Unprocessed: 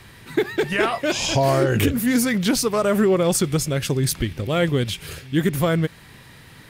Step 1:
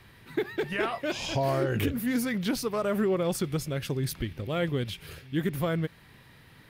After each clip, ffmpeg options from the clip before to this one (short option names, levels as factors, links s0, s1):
-af "equalizer=f=7500:w=1.2:g=-7.5,volume=0.376"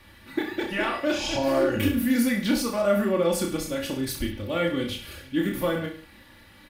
-filter_complex "[0:a]aecho=1:1:3.5:0.83,asplit=2[s0][s1];[s1]aecho=0:1:30|63|99.3|139.2|183.2:0.631|0.398|0.251|0.158|0.1[s2];[s0][s2]amix=inputs=2:normalize=0"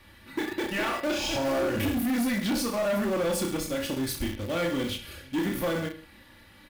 -filter_complex "[0:a]asplit=2[s0][s1];[s1]acrusher=bits=4:mix=0:aa=0.000001,volume=0.447[s2];[s0][s2]amix=inputs=2:normalize=0,asoftclip=type=tanh:threshold=0.0891,volume=0.794"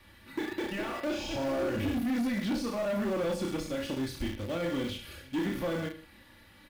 -filter_complex "[0:a]acrossover=split=590[s0][s1];[s1]alimiter=level_in=1.58:limit=0.0631:level=0:latency=1:release=23,volume=0.631[s2];[s0][s2]amix=inputs=2:normalize=0,acrossover=split=6300[s3][s4];[s4]acompressor=threshold=0.00355:ratio=4:attack=1:release=60[s5];[s3][s5]amix=inputs=2:normalize=0,volume=0.708"